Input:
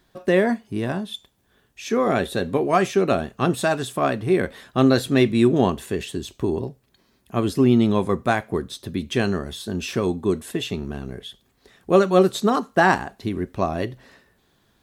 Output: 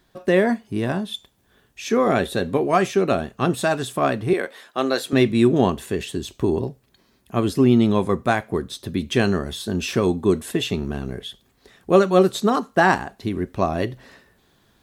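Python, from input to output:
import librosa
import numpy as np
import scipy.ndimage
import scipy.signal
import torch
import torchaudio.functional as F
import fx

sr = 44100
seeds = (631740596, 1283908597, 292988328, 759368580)

y = fx.highpass(x, sr, hz=430.0, slope=12, at=(4.33, 5.13))
y = fx.rider(y, sr, range_db=4, speed_s=2.0)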